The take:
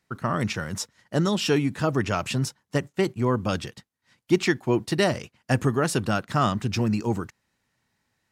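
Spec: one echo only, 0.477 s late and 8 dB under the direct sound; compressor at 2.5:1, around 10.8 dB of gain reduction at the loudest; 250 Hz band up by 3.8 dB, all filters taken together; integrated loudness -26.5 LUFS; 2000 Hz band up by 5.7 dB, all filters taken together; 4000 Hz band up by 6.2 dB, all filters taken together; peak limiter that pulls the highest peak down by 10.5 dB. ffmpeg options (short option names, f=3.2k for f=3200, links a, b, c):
-af "equalizer=f=250:t=o:g=5,equalizer=f=2k:t=o:g=5.5,equalizer=f=4k:t=o:g=6.5,acompressor=threshold=-29dB:ratio=2.5,alimiter=limit=-22dB:level=0:latency=1,aecho=1:1:477:0.398,volume=6.5dB"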